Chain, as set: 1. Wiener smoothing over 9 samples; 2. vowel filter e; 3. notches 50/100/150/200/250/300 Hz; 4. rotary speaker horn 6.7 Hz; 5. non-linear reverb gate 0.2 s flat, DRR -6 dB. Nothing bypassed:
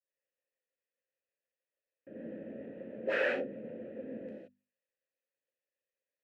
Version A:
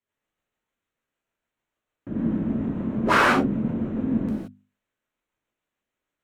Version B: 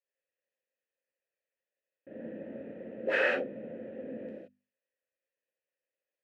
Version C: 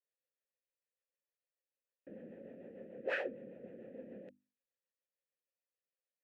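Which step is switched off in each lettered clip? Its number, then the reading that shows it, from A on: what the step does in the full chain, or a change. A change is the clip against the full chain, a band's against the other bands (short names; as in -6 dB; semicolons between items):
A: 2, 500 Hz band -15.0 dB; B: 4, 125 Hz band -3.0 dB; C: 5, crest factor change +2.0 dB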